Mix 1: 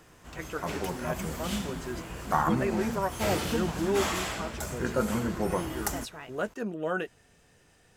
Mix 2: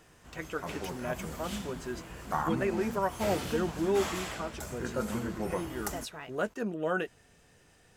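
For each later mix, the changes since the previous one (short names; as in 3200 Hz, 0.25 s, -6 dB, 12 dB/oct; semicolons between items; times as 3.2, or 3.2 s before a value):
background -5.5 dB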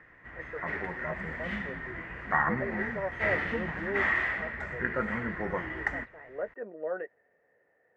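speech: add band-pass 540 Hz, Q 3.4; master: add synth low-pass 1900 Hz, resonance Q 13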